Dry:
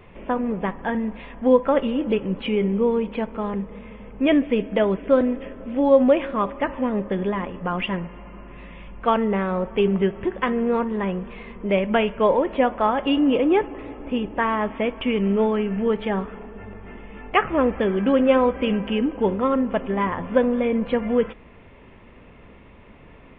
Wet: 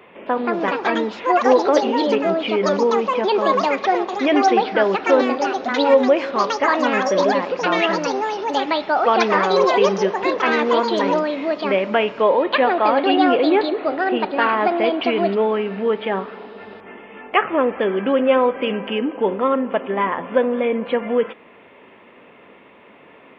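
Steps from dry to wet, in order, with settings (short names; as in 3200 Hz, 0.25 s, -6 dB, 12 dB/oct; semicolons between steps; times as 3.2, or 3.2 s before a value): in parallel at -2.5 dB: limiter -15.5 dBFS, peak gain reduction 10.5 dB; on the sum: echoes that change speed 0.265 s, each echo +6 st, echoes 2; HPF 320 Hz 12 dB/oct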